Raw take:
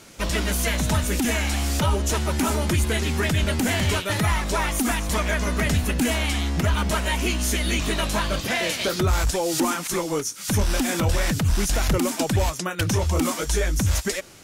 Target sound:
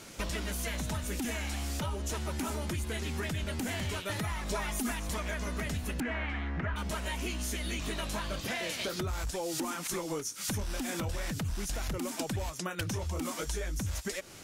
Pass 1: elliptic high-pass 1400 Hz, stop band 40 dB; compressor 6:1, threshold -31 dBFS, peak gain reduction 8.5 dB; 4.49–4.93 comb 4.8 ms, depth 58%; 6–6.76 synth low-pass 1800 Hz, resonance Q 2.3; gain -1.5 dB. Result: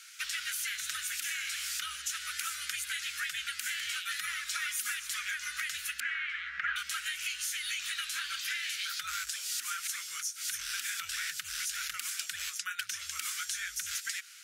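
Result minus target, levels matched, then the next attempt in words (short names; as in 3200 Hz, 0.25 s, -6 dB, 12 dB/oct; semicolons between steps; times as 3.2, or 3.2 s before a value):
1000 Hz band -4.5 dB
compressor 6:1, threshold -31 dBFS, peak gain reduction 13.5 dB; 4.49–4.93 comb 4.8 ms, depth 58%; 6–6.76 synth low-pass 1800 Hz, resonance Q 2.3; gain -1.5 dB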